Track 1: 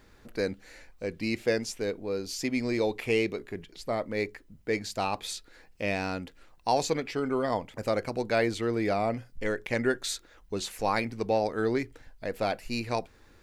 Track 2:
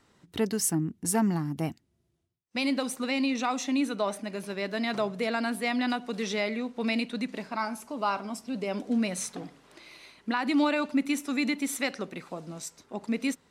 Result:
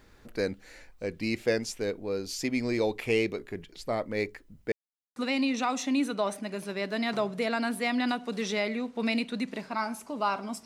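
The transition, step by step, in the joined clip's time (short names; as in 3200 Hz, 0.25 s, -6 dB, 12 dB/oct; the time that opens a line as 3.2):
track 1
4.72–5.16 mute
5.16 switch to track 2 from 2.97 s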